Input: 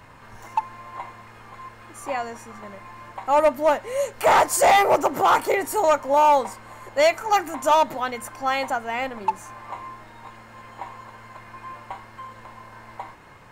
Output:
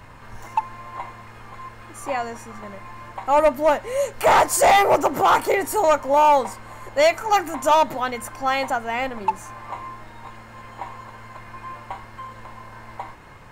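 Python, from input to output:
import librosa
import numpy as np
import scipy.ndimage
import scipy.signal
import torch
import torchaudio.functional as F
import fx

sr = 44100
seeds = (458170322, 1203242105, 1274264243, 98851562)

p1 = fx.low_shelf(x, sr, hz=84.0, db=8.0)
p2 = 10.0 ** (-19.0 / 20.0) * np.tanh(p1 / 10.0 ** (-19.0 / 20.0))
y = p1 + (p2 * 10.0 ** (-11.5 / 20.0))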